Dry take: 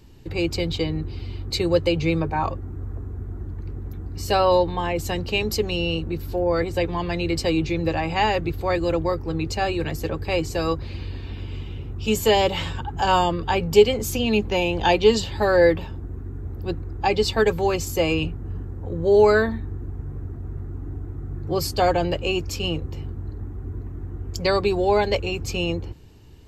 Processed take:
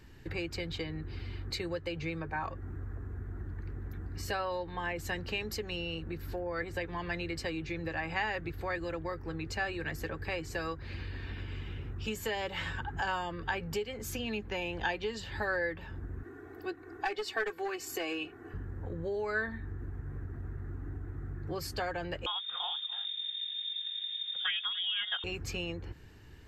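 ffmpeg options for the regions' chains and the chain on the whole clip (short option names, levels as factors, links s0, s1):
-filter_complex "[0:a]asettb=1/sr,asplit=3[s0][s1][s2];[s0]atrim=end=16.234[s3];[s1]atrim=start=16.23:end=18.54,asetpts=PTS-STARTPTS,afade=t=in:d=0.004:c=qsin,afade=t=out:st=2.306:d=0.004:c=qsin,highpass=300,aecho=1:1:2.7:0.81,atrim=end_sample=101871,aeval=exprs='clip(val(0),-1,0.158)':c=same[s4];[s2]atrim=start=18.536[s5];[s3][s4]acrossfade=d=0.004:c1=hsin:c2=qsin[s6];[s6][s5]acrossfade=d=0.004:c1=qsin:c2=hsin,asettb=1/sr,asplit=3[s7][s8][s9];[s7]atrim=end=22.264[s10];[s8]atrim=start=22.26:end=25.24,asetpts=PTS-STARTPTS,afade=t=in:d=0.004:c=qsin,afade=t=out:st=2.976:d=0.004:c=qsin,lowpass=f=3100:t=q:w=0.5098,lowpass=f=3100:t=q:w=0.6013,lowpass=f=3100:t=q:w=0.9,lowpass=f=3100:t=q:w=2.563,afreqshift=-3700,aecho=1:1:292:0.106,atrim=end_sample=131418[s11];[s9]atrim=start=25.236[s12];[s10][s11]acrossfade=d=0.004:c1=hsin:c2=qsin[s13];[s13][s12]acrossfade=d=0.004:c1=qsin:c2=hsin,acompressor=threshold=0.0316:ratio=4,equalizer=f=1700:w=1.8:g=13,volume=0.501"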